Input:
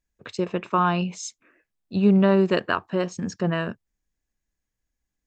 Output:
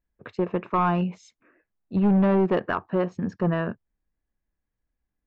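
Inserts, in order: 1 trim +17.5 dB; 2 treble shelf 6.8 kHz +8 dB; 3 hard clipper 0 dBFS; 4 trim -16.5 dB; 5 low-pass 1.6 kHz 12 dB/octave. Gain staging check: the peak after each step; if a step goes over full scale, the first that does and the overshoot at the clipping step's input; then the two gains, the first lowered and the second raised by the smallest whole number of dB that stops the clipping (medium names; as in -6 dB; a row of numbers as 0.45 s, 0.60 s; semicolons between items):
+9.5 dBFS, +9.5 dBFS, 0.0 dBFS, -16.5 dBFS, -16.0 dBFS; step 1, 9.5 dB; step 1 +7.5 dB, step 4 -6.5 dB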